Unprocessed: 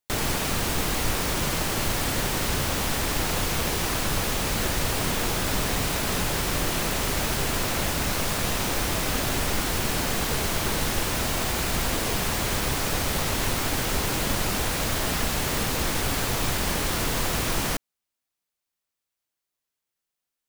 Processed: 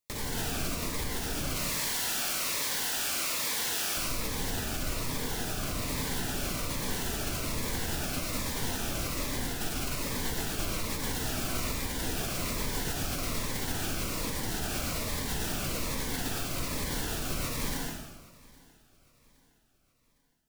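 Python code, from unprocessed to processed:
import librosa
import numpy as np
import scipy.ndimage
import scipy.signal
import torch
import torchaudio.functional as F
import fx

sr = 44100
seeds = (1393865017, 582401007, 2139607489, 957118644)

y = fx.highpass(x, sr, hz=1400.0, slope=6, at=(1.56, 3.97))
y = fx.over_compress(y, sr, threshold_db=-28.0, ratio=-0.5)
y = 10.0 ** (-24.5 / 20.0) * np.tanh(y / 10.0 ** (-24.5 / 20.0))
y = fx.echo_feedback(y, sr, ms=813, feedback_pct=43, wet_db=-24)
y = fx.rev_plate(y, sr, seeds[0], rt60_s=1.3, hf_ratio=0.8, predelay_ms=85, drr_db=-1.5)
y = fx.notch_cascade(y, sr, direction='falling', hz=1.2)
y = y * librosa.db_to_amplitude(-4.5)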